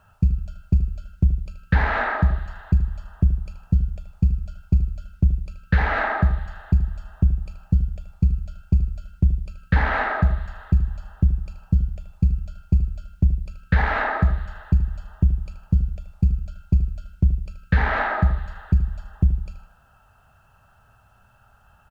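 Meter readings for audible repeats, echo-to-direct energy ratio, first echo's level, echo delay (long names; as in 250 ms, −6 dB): 3, −11.5 dB, −12.0 dB, 78 ms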